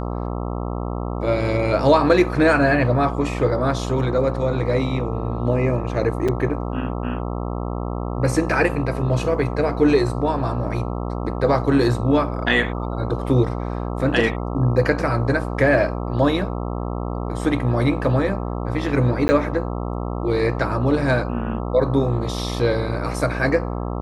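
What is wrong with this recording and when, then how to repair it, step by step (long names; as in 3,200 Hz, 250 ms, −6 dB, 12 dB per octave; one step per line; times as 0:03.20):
mains buzz 60 Hz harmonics 22 −26 dBFS
0:06.28–0:06.29: drop-out 5.2 ms
0:19.28–0:19.29: drop-out 10 ms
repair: hum removal 60 Hz, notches 22
repair the gap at 0:06.28, 5.2 ms
repair the gap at 0:19.28, 10 ms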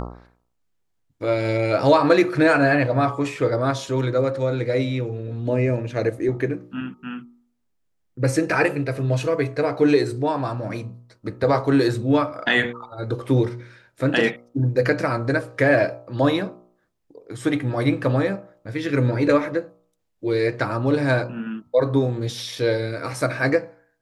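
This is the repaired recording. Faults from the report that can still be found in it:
none of them is left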